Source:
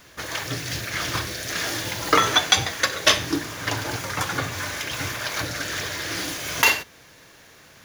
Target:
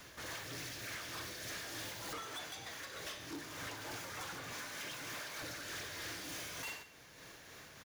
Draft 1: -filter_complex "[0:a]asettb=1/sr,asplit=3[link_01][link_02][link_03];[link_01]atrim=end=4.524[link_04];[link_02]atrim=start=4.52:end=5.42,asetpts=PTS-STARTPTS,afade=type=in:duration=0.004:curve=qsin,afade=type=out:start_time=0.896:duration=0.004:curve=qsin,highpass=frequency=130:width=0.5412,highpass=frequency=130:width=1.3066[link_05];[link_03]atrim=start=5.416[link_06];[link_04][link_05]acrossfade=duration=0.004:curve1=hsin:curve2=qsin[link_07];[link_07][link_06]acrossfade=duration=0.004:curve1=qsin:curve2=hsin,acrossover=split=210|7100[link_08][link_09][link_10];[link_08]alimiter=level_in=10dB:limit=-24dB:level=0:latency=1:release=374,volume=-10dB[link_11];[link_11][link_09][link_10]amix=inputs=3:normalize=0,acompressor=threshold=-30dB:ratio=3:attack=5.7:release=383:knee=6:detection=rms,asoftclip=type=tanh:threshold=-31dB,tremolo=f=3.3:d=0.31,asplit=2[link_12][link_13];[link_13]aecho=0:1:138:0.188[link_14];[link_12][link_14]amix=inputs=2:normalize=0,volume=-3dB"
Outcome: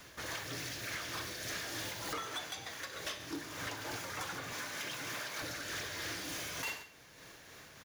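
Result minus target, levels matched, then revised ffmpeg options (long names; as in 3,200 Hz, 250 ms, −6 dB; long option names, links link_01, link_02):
soft clipping: distortion −5 dB
-filter_complex "[0:a]asettb=1/sr,asplit=3[link_01][link_02][link_03];[link_01]atrim=end=4.524[link_04];[link_02]atrim=start=4.52:end=5.42,asetpts=PTS-STARTPTS,afade=type=in:duration=0.004:curve=qsin,afade=type=out:start_time=0.896:duration=0.004:curve=qsin,highpass=frequency=130:width=0.5412,highpass=frequency=130:width=1.3066[link_05];[link_03]atrim=start=5.416[link_06];[link_04][link_05]acrossfade=duration=0.004:curve1=hsin:curve2=qsin[link_07];[link_07][link_06]acrossfade=duration=0.004:curve1=qsin:curve2=hsin,acrossover=split=210|7100[link_08][link_09][link_10];[link_08]alimiter=level_in=10dB:limit=-24dB:level=0:latency=1:release=374,volume=-10dB[link_11];[link_11][link_09][link_10]amix=inputs=3:normalize=0,acompressor=threshold=-30dB:ratio=3:attack=5.7:release=383:knee=6:detection=rms,asoftclip=type=tanh:threshold=-38dB,tremolo=f=3.3:d=0.31,asplit=2[link_12][link_13];[link_13]aecho=0:1:138:0.188[link_14];[link_12][link_14]amix=inputs=2:normalize=0,volume=-3dB"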